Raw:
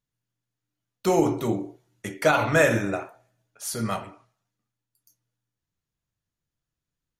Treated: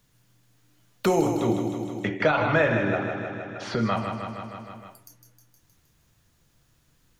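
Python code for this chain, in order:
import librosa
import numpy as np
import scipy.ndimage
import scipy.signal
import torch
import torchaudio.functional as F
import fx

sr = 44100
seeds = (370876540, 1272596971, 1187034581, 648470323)

y = fx.lowpass(x, sr, hz=4100.0, slope=24, at=(1.34, 3.97))
y = fx.echo_feedback(y, sr, ms=156, feedback_pct=50, wet_db=-8.5)
y = fx.band_squash(y, sr, depth_pct=70)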